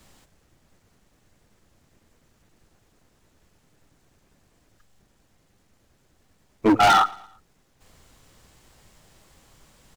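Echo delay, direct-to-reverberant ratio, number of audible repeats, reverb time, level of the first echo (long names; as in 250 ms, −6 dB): 113 ms, no reverb audible, 2, no reverb audible, −22.5 dB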